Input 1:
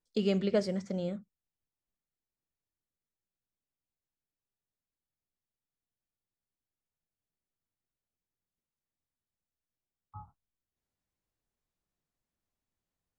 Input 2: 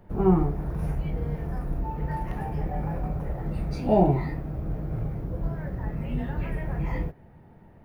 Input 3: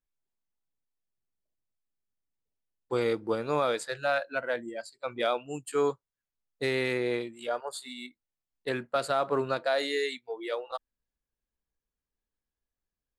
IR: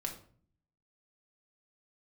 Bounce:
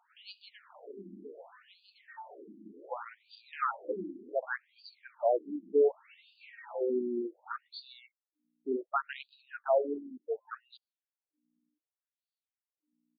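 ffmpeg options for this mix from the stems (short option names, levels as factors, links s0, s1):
-filter_complex "[0:a]volume=0.282,asplit=2[s0][s1];[s1]volume=0.631[s2];[1:a]lowshelf=f=470:g=-4.5,acompressor=threshold=0.0141:ratio=1.5,volume=0.631[s3];[2:a]afwtdn=0.0224,aeval=exprs='val(0)+0.000316*(sin(2*PI*60*n/s)+sin(2*PI*2*60*n/s)/2+sin(2*PI*3*60*n/s)/3+sin(2*PI*4*60*n/s)/4+sin(2*PI*5*60*n/s)/5)':c=same,volume=1.41[s4];[s2]aecho=0:1:706|1412|2118|2824|3530|4236|4942:1|0.51|0.26|0.133|0.0677|0.0345|0.0176[s5];[s0][s3][s4][s5]amix=inputs=4:normalize=0,equalizer=f=4600:t=o:w=0.53:g=14.5,afftfilt=real='re*between(b*sr/1024,250*pow(3500/250,0.5+0.5*sin(2*PI*0.67*pts/sr))/1.41,250*pow(3500/250,0.5+0.5*sin(2*PI*0.67*pts/sr))*1.41)':imag='im*between(b*sr/1024,250*pow(3500/250,0.5+0.5*sin(2*PI*0.67*pts/sr))/1.41,250*pow(3500/250,0.5+0.5*sin(2*PI*0.67*pts/sr))*1.41)':win_size=1024:overlap=0.75"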